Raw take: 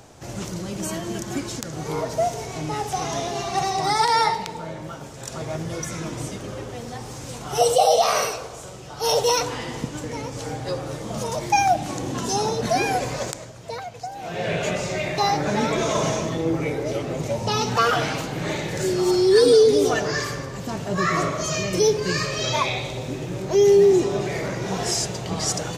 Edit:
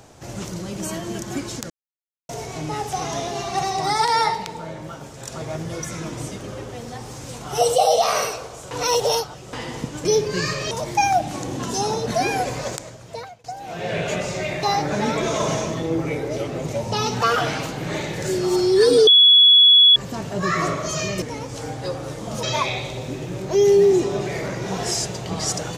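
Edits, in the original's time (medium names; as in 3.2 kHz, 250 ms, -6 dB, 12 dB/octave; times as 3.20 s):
1.70–2.29 s: mute
8.71–9.53 s: reverse
10.05–11.26 s: swap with 21.77–22.43 s
13.70–13.99 s: fade out, to -24 dB
19.62–20.51 s: bleep 3.38 kHz -8 dBFS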